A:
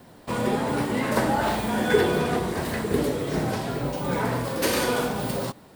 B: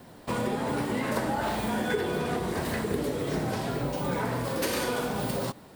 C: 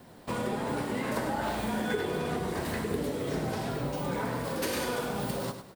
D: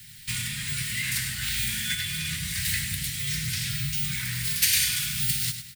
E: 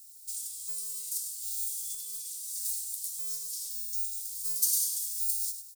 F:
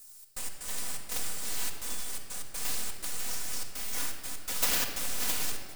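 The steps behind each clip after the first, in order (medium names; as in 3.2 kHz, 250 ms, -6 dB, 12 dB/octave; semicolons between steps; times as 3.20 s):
compression 4:1, threshold -26 dBFS, peak gain reduction 11 dB
feedback delay 102 ms, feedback 29%, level -9.5 dB; trim -3 dB
Chebyshev band-stop 140–2000 Hz, order 3; treble shelf 2.1 kHz +11.5 dB; trim +6 dB
inverse Chebyshev high-pass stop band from 1.4 kHz, stop band 70 dB; trim -2.5 dB
tracing distortion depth 0.26 ms; trance gate "xx.x.xxx.xxxxx.x" 124 bpm -60 dB; simulated room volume 3700 m³, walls mixed, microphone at 1.9 m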